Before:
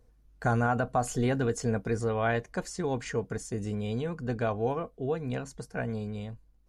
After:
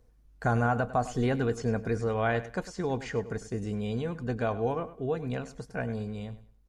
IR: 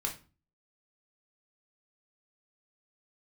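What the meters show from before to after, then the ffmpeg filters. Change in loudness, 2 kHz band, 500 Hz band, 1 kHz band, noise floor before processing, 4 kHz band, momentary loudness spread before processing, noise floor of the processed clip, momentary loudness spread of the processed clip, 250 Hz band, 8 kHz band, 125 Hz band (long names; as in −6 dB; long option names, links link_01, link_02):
0.0 dB, 0.0 dB, 0.0 dB, 0.0 dB, −62 dBFS, −0.5 dB, 8 LU, −60 dBFS, 9 LU, 0.0 dB, −7.5 dB, 0.0 dB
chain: -filter_complex "[0:a]acrossover=split=5600[link_01][link_02];[link_02]acompressor=threshold=-57dB:ratio=4:attack=1:release=60[link_03];[link_01][link_03]amix=inputs=2:normalize=0,asplit=2[link_04][link_05];[link_05]aecho=0:1:101|202|303:0.178|0.0427|0.0102[link_06];[link_04][link_06]amix=inputs=2:normalize=0"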